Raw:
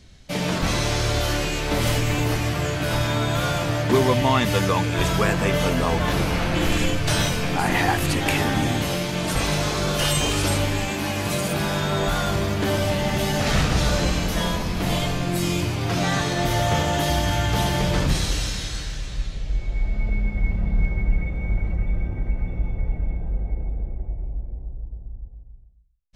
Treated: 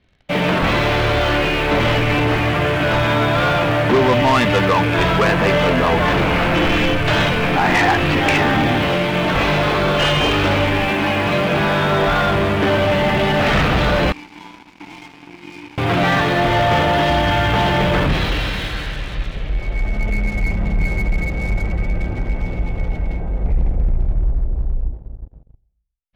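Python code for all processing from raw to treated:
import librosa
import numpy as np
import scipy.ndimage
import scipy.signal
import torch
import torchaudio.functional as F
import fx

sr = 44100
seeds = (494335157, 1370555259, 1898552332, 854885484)

y = fx.chain(x, sr, fx.vowel_filter(vowel='u'),
    fx.peak_eq(hz=340.0, db=-9.0, octaves=2.9), at=(14.12, 15.78))
y = fx.chain(y, sr, fx.tilt_eq(slope=-2.5),
    fx.hum_notches(base_hz=50, count=10),
    fx.doppler_dist(depth_ms=0.62), at=(23.44, 24.92))
y = scipy.signal.sosfilt(scipy.signal.butter(4, 3100.0, 'lowpass', fs=sr, output='sos'), y)
y = fx.low_shelf(y, sr, hz=210.0, db=-8.0)
y = fx.leveller(y, sr, passes=3)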